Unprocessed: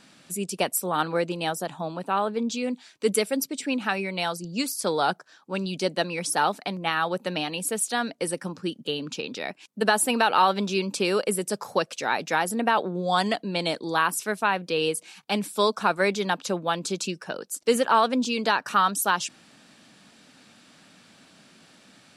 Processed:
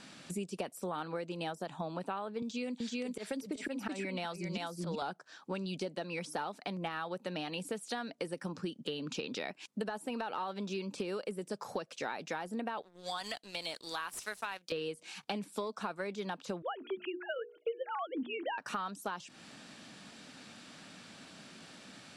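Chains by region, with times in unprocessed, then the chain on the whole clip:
2.42–5.02 auto swell 0.391 s + echo 0.38 s -5 dB + three-band squash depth 100%
12.82–14.72 median filter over 3 samples + pre-emphasis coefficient 0.97 + sample leveller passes 2
16.62–18.58 sine-wave speech + notches 60/120/180/240/300/360/420/480 Hz
whole clip: de-esser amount 90%; LPF 10000 Hz 12 dB/oct; compressor 12:1, threshold -36 dBFS; gain +1.5 dB

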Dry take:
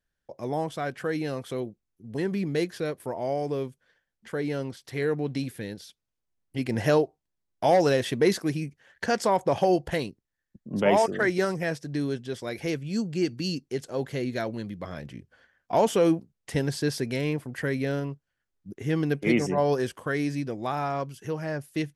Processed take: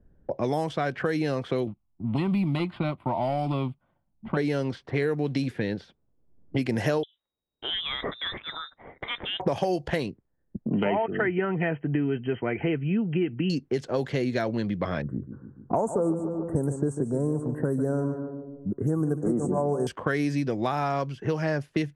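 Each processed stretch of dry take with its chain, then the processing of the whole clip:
1.67–4.37 high shelf 3100 Hz -8.5 dB + sample leveller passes 1 + fixed phaser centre 1700 Hz, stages 6
7.03–9.4 inverted band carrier 3800 Hz + compressor 2.5:1, threshold -42 dBFS
10.7–13.5 brick-wall FIR low-pass 3200 Hz + notch comb 550 Hz
15.02–19.87 envelope phaser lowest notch 570 Hz, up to 2500 Hz, full sweep at -26 dBFS + elliptic band-stop 1300–8200 Hz + feedback echo 0.145 s, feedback 45%, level -12 dB
whole clip: compressor 2.5:1, threshold -32 dBFS; low-pass opened by the level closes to 390 Hz, open at -28.5 dBFS; three-band squash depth 70%; gain +7 dB

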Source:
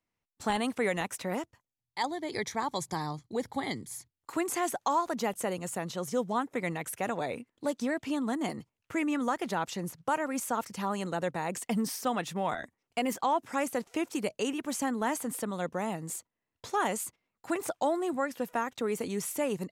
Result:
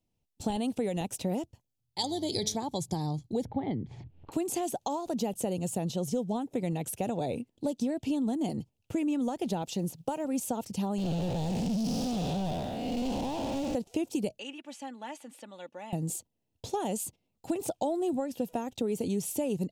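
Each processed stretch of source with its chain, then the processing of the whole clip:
1.98–2.56 resonant high shelf 2800 Hz +8.5 dB, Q 1.5 + de-hum 215.1 Hz, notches 25 + buzz 100 Hz, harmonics 7, -56 dBFS -3 dB/oct
3.45–4.32 LPF 2400 Hz 24 dB/oct + upward compressor, threshold -39 dBFS
9.62–10.25 bell 65 Hz -11.5 dB 1.5 oct + companded quantiser 8-bit
10.98–13.75 time blur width 0.332 s + ladder low-pass 6000 Hz, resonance 40% + sample leveller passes 5
14.39–15.93 band-pass 1900 Hz, Q 1.7 + comb 3.5 ms, depth 53%
whole clip: low shelf 260 Hz +10.5 dB; compressor, threshold -28 dBFS; band shelf 1500 Hz -13.5 dB 1.3 oct; gain +1.5 dB

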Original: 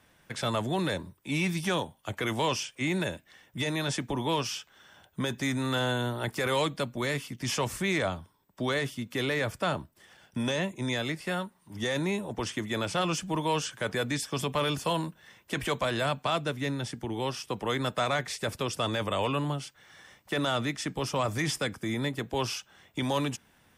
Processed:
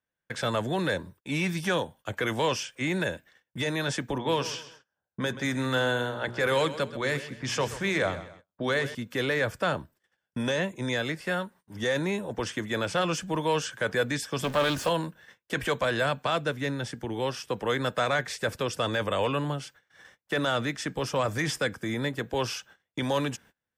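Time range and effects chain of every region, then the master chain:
4.18–8.95 notches 60/120/180/240/300/360/420 Hz + low-pass opened by the level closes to 1000 Hz, open at -26 dBFS + feedback echo 0.13 s, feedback 35%, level -14 dB
14.44–14.89 zero-crossing step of -35 dBFS + comb 3.3 ms, depth 31% + Doppler distortion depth 0.18 ms
whole clip: gate -52 dBFS, range -29 dB; thirty-one-band EQ 500 Hz +6 dB, 1600 Hz +7 dB, 10000 Hz -4 dB

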